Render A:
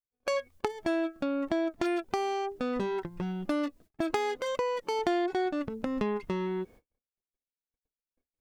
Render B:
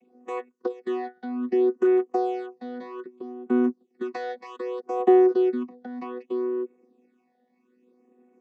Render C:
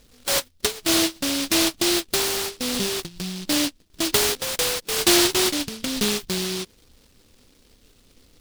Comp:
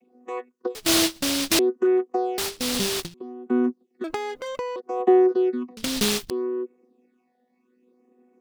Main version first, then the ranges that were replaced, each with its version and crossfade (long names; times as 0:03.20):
B
0:00.75–0:01.59: punch in from C
0:02.38–0:03.14: punch in from C
0:04.04–0:04.76: punch in from A
0:05.77–0:06.30: punch in from C